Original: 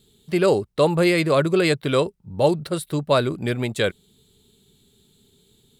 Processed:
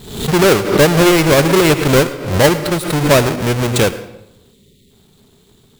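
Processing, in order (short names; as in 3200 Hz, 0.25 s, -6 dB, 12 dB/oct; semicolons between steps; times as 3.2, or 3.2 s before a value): half-waves squared off; spectral delete 4.53–4.9, 590–1800 Hz; reverb RT60 0.90 s, pre-delay 72 ms, DRR 13 dB; backwards sustainer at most 82 dB/s; gain +3 dB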